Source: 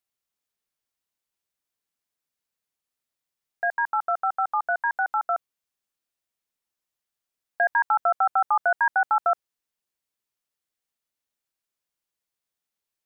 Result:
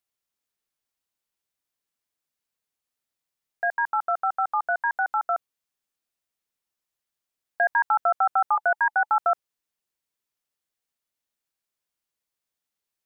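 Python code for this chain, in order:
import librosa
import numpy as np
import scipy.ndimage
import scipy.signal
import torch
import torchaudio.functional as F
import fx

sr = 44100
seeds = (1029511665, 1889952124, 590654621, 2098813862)

y = fx.notch(x, sr, hz=860.0, q=12.0, at=(8.55, 9.09))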